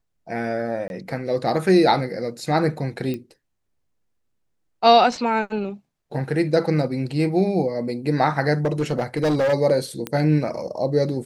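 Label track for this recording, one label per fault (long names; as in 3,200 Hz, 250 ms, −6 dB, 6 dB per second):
0.880000	0.900000	drop-out 21 ms
3.140000	3.140000	click −17 dBFS
8.650000	9.540000	clipping −16.5 dBFS
10.070000	10.070000	click −11 dBFS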